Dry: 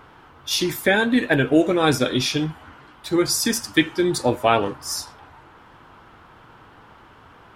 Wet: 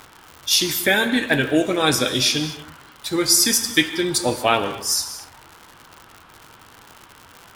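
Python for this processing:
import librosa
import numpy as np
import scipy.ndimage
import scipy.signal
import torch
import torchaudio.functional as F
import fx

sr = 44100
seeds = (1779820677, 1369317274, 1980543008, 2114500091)

y = fx.high_shelf(x, sr, hz=2300.0, db=10.5)
y = fx.rev_gated(y, sr, seeds[0], gate_ms=260, shape='flat', drr_db=10.0)
y = fx.dmg_crackle(y, sr, seeds[1], per_s=130.0, level_db=-27.0)
y = y * librosa.db_to_amplitude(-2.5)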